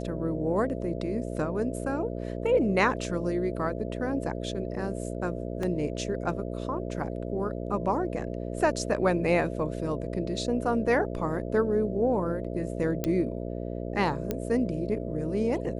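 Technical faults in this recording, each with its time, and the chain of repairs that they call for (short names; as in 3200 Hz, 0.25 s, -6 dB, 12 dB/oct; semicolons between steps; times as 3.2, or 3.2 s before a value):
buzz 60 Hz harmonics 11 -34 dBFS
5.63 gap 3.1 ms
13.04 pop -13 dBFS
14.31 pop -15 dBFS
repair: de-click; de-hum 60 Hz, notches 11; interpolate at 5.63, 3.1 ms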